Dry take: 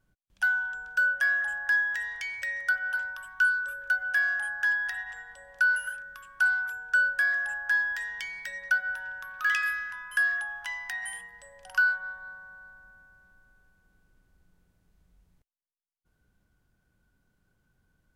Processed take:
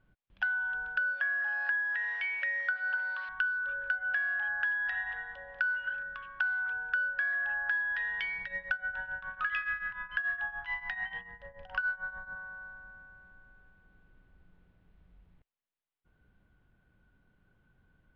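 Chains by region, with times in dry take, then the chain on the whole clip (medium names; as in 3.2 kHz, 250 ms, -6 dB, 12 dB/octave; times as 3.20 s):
1.03–3.29 s: zero-crossing glitches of -30 dBFS + steep high-pass 180 Hz + tone controls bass -7 dB, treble -12 dB
8.38–12.36 s: bass shelf 360 Hz +10 dB + tremolo triangle 6.9 Hz, depth 85%
whole clip: inverse Chebyshev low-pass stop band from 7.9 kHz, stop band 50 dB; compression 6:1, threshold -33 dBFS; trim +3.5 dB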